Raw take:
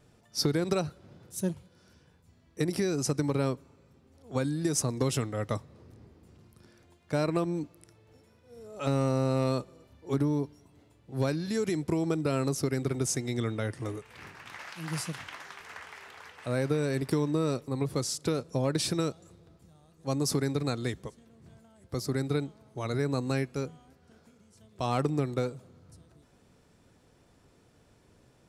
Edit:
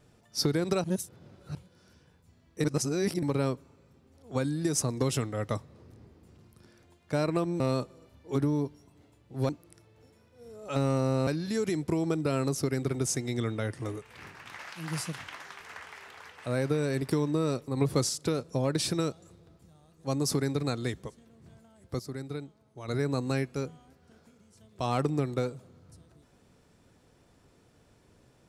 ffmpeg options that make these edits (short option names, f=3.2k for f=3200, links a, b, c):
-filter_complex "[0:a]asplit=12[a][b][c][d][e][f][g][h][i][j][k][l];[a]atrim=end=0.842[m];[b]atrim=start=0.838:end=1.552,asetpts=PTS-STARTPTS,areverse[n];[c]atrim=start=1.548:end=2.642[o];[d]atrim=start=2.638:end=3.232,asetpts=PTS-STARTPTS,areverse[p];[e]atrim=start=3.228:end=7.602[q];[f]atrim=start=9.378:end=11.272[r];[g]atrim=start=7.598:end=9.382[s];[h]atrim=start=11.268:end=17.772[t];[i]atrim=start=17.768:end=18.092,asetpts=PTS-STARTPTS,volume=4dB[u];[j]atrim=start=18.088:end=21.992[v];[k]atrim=start=21.988:end=22.882,asetpts=PTS-STARTPTS,volume=-8dB[w];[l]atrim=start=22.878[x];[m][n]acrossfade=d=0.004:c1=hsin:c2=hsin[y];[y][o]acrossfade=d=0.004:c1=hsin:c2=hsin[z];[z][p]acrossfade=d=0.004:c1=hsin:c2=hsin[aa];[aa][q]acrossfade=d=0.004:c1=hsin:c2=hsin[ab];[ab][r]acrossfade=d=0.004:c1=hsin:c2=hsin[ac];[ac][s]acrossfade=d=0.004:c1=hsin:c2=hsin[ad];[ad][t]acrossfade=d=0.004:c1=hsin:c2=hsin[ae];[ae][u]acrossfade=d=0.004:c1=hsin:c2=hsin[af];[af][v]acrossfade=d=0.004:c1=hsin:c2=hsin[ag];[ag][w]acrossfade=d=0.004:c1=hsin:c2=hsin[ah];[ah][x]acrossfade=d=0.004:c1=hsin:c2=hsin"